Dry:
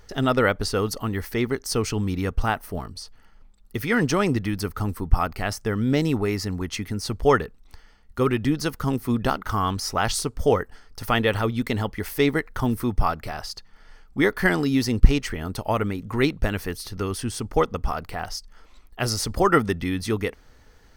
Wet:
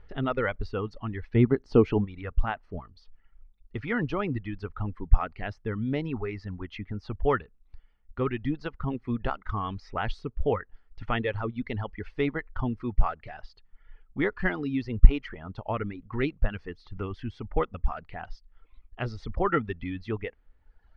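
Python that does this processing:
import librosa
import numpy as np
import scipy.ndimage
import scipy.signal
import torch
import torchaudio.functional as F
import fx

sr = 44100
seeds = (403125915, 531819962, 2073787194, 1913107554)

y = fx.peak_eq(x, sr, hz=fx.line((1.34, 120.0), (2.04, 530.0)), db=14.0, octaves=2.9, at=(1.34, 2.04), fade=0.02)
y = scipy.signal.sosfilt(scipy.signal.butter(4, 3100.0, 'lowpass', fs=sr, output='sos'), y)
y = fx.dereverb_blind(y, sr, rt60_s=1.2)
y = fx.low_shelf(y, sr, hz=69.0, db=10.0)
y = y * librosa.db_to_amplitude(-7.0)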